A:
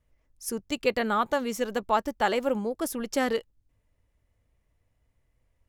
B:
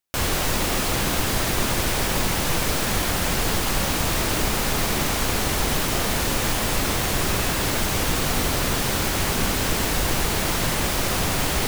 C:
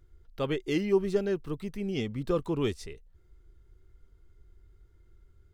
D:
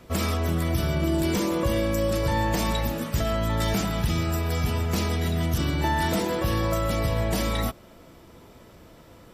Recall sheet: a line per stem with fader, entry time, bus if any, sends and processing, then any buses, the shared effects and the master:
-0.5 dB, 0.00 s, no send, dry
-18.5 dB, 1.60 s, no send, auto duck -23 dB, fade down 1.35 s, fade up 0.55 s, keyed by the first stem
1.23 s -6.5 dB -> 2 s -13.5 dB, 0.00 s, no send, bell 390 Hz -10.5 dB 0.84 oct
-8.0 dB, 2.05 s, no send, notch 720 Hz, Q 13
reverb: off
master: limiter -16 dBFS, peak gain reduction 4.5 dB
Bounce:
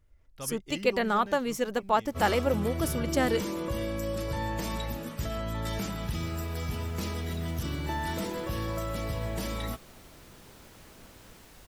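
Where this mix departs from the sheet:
stem B -18.5 dB -> -30.5 dB; master: missing limiter -16 dBFS, peak gain reduction 4.5 dB

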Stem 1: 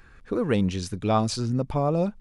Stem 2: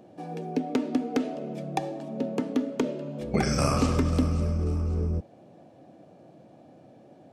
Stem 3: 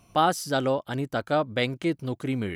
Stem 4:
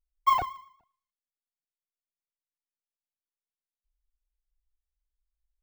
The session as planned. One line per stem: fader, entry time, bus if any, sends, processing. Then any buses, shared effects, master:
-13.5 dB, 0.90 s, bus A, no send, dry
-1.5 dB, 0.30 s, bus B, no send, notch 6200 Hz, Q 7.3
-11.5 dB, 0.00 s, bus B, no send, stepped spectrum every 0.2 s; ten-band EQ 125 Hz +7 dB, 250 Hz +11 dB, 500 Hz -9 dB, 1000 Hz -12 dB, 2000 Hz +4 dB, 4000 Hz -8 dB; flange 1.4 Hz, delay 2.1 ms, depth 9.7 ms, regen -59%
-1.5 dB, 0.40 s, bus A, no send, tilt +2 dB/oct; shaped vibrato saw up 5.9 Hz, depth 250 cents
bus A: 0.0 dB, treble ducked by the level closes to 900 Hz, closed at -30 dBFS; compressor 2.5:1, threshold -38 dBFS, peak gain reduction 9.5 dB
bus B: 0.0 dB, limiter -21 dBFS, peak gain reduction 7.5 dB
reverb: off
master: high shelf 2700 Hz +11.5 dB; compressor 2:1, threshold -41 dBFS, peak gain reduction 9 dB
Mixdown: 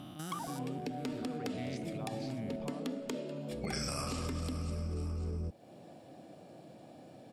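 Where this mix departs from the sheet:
stem 3: missing flange 1.4 Hz, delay 2.1 ms, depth 9.7 ms, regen -59%; stem 4: entry 0.40 s -> 0.05 s

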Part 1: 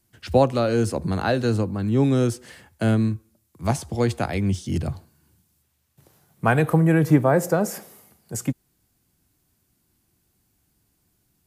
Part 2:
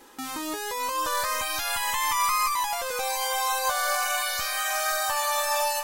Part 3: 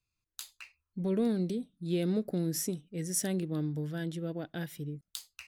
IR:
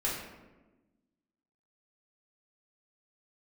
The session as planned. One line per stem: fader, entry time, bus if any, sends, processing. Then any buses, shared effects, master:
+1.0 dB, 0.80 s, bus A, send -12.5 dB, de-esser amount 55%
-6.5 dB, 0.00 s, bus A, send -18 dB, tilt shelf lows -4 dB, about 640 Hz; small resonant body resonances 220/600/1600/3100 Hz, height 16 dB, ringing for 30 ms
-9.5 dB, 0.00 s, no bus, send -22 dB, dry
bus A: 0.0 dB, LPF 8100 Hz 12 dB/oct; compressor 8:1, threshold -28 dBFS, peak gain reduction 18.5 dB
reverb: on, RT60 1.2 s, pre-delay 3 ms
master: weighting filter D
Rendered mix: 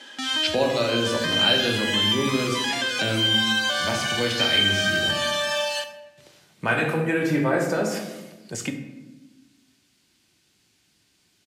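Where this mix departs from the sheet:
stem 1: entry 0.80 s -> 0.20 s; stem 3 -9.5 dB -> -20.5 dB

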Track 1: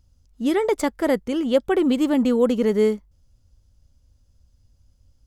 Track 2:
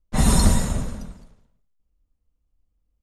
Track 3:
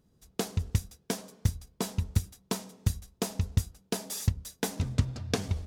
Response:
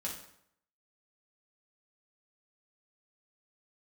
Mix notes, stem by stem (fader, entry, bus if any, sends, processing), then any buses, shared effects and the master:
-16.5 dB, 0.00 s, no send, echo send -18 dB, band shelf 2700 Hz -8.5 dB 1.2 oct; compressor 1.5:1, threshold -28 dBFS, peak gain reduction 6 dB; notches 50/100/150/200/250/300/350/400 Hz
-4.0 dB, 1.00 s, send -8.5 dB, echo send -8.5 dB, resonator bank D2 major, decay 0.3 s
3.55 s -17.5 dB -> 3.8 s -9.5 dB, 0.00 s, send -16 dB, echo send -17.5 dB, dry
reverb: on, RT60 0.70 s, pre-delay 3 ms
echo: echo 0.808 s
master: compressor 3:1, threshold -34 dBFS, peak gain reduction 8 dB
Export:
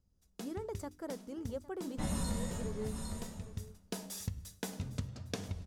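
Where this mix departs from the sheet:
stem 2: entry 1.00 s -> 1.85 s; reverb return +8.0 dB

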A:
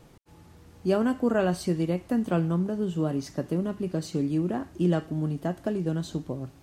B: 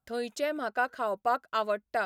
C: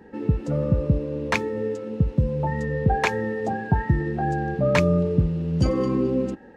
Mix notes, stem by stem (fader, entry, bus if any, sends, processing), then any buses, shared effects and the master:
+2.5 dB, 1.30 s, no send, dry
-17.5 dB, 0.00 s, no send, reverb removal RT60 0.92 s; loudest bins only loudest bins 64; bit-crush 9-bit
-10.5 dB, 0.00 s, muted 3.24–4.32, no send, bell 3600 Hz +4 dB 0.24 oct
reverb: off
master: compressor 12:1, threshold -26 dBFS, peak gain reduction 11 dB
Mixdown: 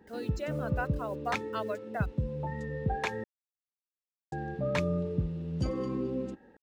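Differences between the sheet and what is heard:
stem A: muted; stem B -17.5 dB -> -6.5 dB; master: missing compressor 12:1, threshold -26 dBFS, peak gain reduction 11 dB

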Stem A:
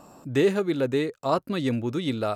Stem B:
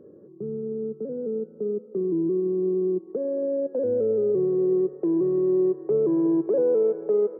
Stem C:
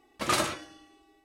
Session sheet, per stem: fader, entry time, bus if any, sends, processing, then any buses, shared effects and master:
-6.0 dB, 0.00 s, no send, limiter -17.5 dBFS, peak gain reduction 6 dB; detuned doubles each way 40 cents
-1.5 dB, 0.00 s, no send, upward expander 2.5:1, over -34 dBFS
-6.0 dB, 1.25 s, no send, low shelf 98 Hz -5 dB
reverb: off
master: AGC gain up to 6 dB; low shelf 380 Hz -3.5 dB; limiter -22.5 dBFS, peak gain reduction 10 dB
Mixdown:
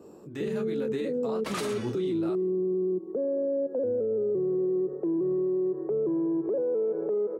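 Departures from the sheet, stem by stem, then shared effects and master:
stem B: missing upward expander 2.5:1, over -34 dBFS; master: missing low shelf 380 Hz -3.5 dB

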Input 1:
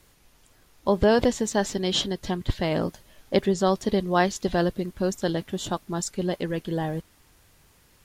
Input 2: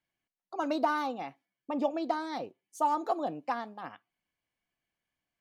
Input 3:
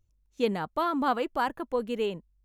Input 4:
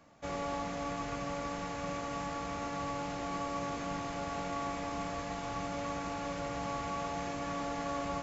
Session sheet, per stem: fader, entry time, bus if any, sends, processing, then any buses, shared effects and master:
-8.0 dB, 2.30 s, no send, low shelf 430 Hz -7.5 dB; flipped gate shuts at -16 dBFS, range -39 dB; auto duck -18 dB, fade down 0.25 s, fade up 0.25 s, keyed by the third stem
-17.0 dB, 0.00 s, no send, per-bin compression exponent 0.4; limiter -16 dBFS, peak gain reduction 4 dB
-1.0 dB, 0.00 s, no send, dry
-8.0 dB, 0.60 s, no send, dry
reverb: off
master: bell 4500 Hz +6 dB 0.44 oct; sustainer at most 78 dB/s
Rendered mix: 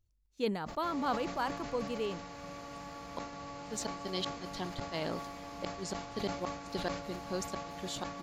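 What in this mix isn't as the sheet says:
stem 2: muted; stem 3 -1.0 dB -> -7.0 dB

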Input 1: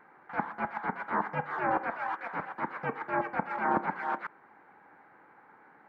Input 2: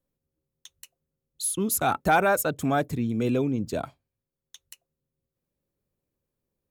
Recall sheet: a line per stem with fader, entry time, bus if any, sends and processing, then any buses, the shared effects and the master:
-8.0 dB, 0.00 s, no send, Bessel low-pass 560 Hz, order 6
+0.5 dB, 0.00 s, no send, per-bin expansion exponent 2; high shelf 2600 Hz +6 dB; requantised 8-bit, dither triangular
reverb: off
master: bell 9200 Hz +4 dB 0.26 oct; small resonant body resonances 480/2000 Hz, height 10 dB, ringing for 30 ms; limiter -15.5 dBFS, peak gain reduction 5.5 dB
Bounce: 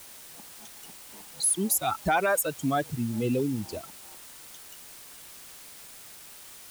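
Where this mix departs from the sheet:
stem 1 -8.0 dB -> -17.5 dB; master: missing small resonant body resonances 480/2000 Hz, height 10 dB, ringing for 30 ms

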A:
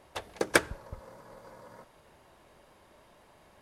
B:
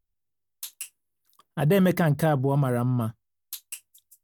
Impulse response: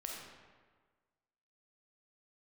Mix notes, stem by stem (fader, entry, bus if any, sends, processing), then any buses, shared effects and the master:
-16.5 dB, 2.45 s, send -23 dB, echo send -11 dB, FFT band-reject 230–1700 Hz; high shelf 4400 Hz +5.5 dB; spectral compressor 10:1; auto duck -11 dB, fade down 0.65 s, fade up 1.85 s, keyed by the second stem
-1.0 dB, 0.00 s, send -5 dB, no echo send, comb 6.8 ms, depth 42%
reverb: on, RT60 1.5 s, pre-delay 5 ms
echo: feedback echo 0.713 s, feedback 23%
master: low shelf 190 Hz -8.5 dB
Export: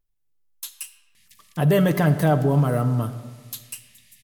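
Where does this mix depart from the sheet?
stem A: entry 2.45 s -> 1.15 s; master: missing low shelf 190 Hz -8.5 dB

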